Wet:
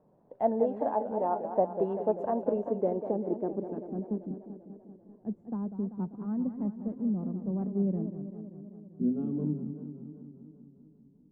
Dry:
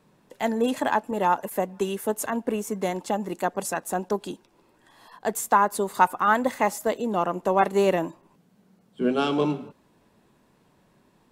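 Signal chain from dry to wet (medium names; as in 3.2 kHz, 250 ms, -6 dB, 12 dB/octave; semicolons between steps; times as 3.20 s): low-pass sweep 670 Hz -> 210 Hz, 2.40–4.39 s; 0.63–1.54 s: feedback comb 71 Hz, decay 0.15 s, harmonics all, mix 80%; modulated delay 195 ms, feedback 69%, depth 172 cents, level -10 dB; trim -6 dB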